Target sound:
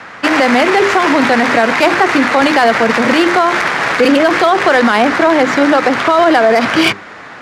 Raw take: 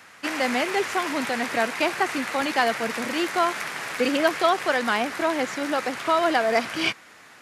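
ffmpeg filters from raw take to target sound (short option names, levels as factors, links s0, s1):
-filter_complex "[0:a]acrossover=split=450[s0][s1];[s1]adynamicsmooth=sensitivity=2:basefreq=3100[s2];[s0][s2]amix=inputs=2:normalize=0,equalizer=f=2600:t=o:w=0.77:g=-3,bandreject=f=50:t=h:w=6,bandreject=f=100:t=h:w=6,bandreject=f=150:t=h:w=6,bandreject=f=200:t=h:w=6,bandreject=f=250:t=h:w=6,bandreject=f=300:t=h:w=6,bandreject=f=350:t=h:w=6,bandreject=f=400:t=h:w=6,alimiter=level_in=11.2:limit=0.891:release=50:level=0:latency=1,volume=0.891"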